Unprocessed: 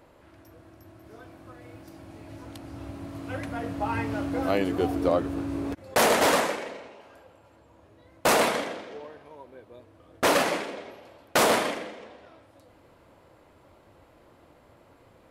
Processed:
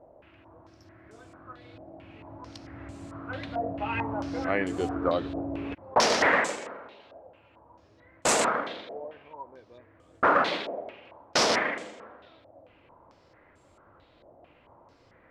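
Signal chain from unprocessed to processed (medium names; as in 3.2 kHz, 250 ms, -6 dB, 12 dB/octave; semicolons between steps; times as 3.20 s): step-sequenced low-pass 4.5 Hz 680–7600 Hz; trim -4 dB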